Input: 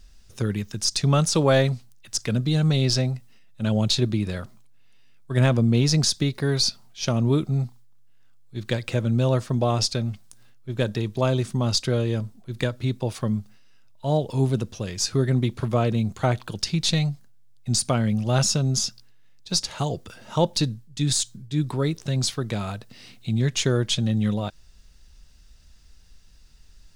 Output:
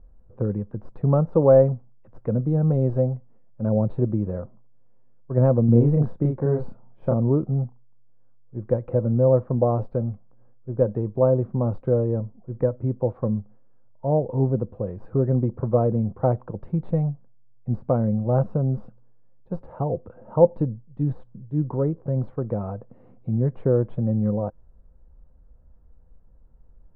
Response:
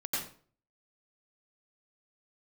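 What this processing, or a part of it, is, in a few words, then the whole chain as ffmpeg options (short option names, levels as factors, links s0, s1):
under water: -filter_complex "[0:a]asettb=1/sr,asplit=3[s0][s1][s2];[s0]atrim=end=5.654[s3];[s1]atrim=start=5.65:end=7.14,asetpts=PTS-STARTPTS,afade=t=in:d=0.004:c=qsin,afade=t=out:st=1.486:d=0.004:c=qsin,asplit=2[s4][s5];[s5]adelay=34,volume=0.708[s6];[s4][s6]amix=inputs=2:normalize=0,atrim=end_sample=65709[s7];[s2]atrim=start=7.136[s8];[s3][s7]acrossfade=d=0.004:c1=hsin:c2=qsin[s9];[s9][s8]acrossfade=d=0.004:c1=qsin:c2=hsin,lowpass=f=1000:w=0.5412,lowpass=f=1000:w=1.3066,equalizer=f=510:t=o:w=0.21:g=10.5"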